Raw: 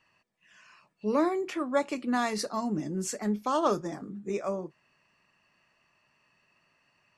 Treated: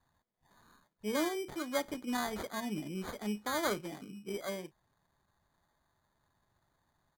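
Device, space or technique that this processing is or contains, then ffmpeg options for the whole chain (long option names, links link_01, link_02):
crushed at another speed: -af "asetrate=55125,aresample=44100,acrusher=samples=13:mix=1:aa=0.000001,asetrate=35280,aresample=44100,volume=-7dB"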